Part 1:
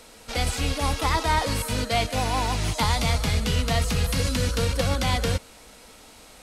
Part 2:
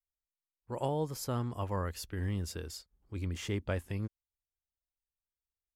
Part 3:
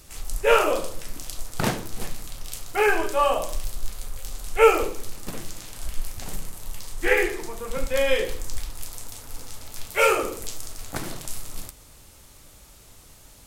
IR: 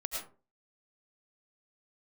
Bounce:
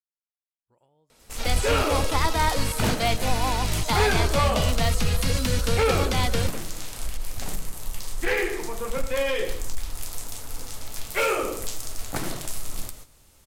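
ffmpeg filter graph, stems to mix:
-filter_complex "[0:a]adelay=1100,volume=0.944[s0];[1:a]tiltshelf=f=970:g=-3,acompressor=threshold=0.0126:ratio=6,volume=0.178,asplit=2[s1][s2];[s2]volume=0.112[s3];[2:a]acompressor=threshold=0.0562:ratio=2,volume=11.9,asoftclip=hard,volume=0.0841,adelay=1200,volume=1.19,asplit=2[s4][s5];[s5]volume=0.2[s6];[3:a]atrim=start_sample=2205[s7];[s3][s6]amix=inputs=2:normalize=0[s8];[s8][s7]afir=irnorm=-1:irlink=0[s9];[s0][s1][s4][s9]amix=inputs=4:normalize=0,agate=range=0.316:threshold=0.01:ratio=16:detection=peak"

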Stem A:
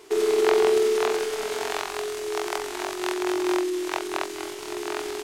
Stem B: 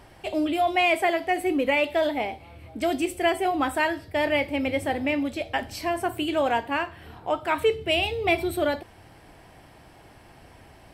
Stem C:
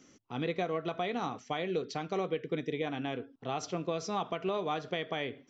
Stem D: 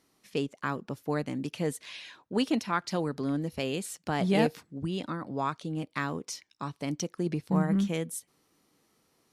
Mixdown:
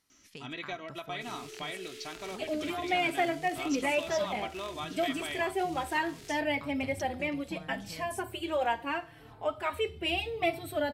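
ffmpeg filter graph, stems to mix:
-filter_complex "[0:a]equalizer=f=970:t=o:w=0.95:g=-13.5,adelay=1100,volume=0.316[s0];[1:a]asplit=2[s1][s2];[s2]adelay=4,afreqshift=-0.72[s3];[s1][s3]amix=inputs=2:normalize=1,adelay=2150,volume=0.631[s4];[2:a]equalizer=f=380:t=o:w=2.5:g=-13,aecho=1:1:3.1:0.68,adelay=100,volume=1.06[s5];[3:a]volume=0.631[s6];[s0][s6]amix=inputs=2:normalize=0,equalizer=f=370:w=0.56:g=-11.5,acompressor=threshold=0.00708:ratio=6,volume=1[s7];[s4][s5][s7]amix=inputs=3:normalize=0"

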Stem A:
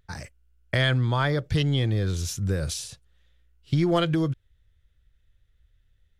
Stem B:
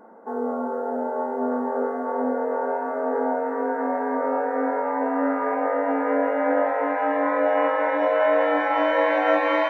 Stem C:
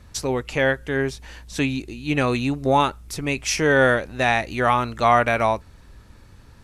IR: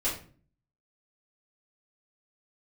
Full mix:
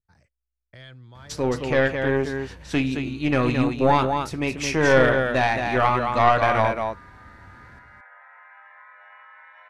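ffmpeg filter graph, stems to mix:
-filter_complex "[0:a]adynamicequalizer=threshold=0.0112:dfrequency=2200:dqfactor=0.7:tfrequency=2200:tqfactor=0.7:attack=5:release=100:ratio=0.375:range=3.5:mode=boostabove:tftype=highshelf,volume=0.1,asplit=2[s0][s1];[1:a]highpass=f=1300:w=0.5412,highpass=f=1300:w=1.3066,acompressor=threshold=0.0251:ratio=6,adelay=1550,volume=0.355[s2];[2:a]highpass=54,adelay=1150,volume=1.19,asplit=3[s3][s4][s5];[s4]volume=0.158[s6];[s5]volume=0.562[s7];[s1]apad=whole_len=496044[s8];[s2][s8]sidechaincompress=threshold=0.00141:ratio=8:attack=16:release=947[s9];[3:a]atrim=start_sample=2205[s10];[s6][s10]afir=irnorm=-1:irlink=0[s11];[s7]aecho=0:1:219:1[s12];[s0][s9][s3][s11][s12]amix=inputs=5:normalize=0,lowpass=f=2800:p=1,aeval=exprs='(tanh(2.24*val(0)+0.55)-tanh(0.55))/2.24':c=same"

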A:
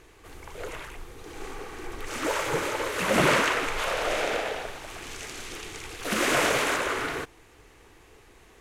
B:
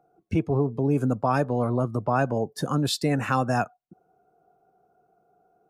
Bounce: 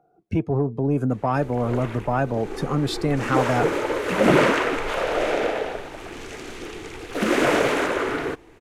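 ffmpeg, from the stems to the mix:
-filter_complex "[0:a]equalizer=f=310:w=0.66:g=7,adelay=1100,volume=1.26[s0];[1:a]asoftclip=type=tanh:threshold=0.251,volume=1.26[s1];[s0][s1]amix=inputs=2:normalize=0,highshelf=f=4300:g=-9,bandreject=f=1100:w=26"

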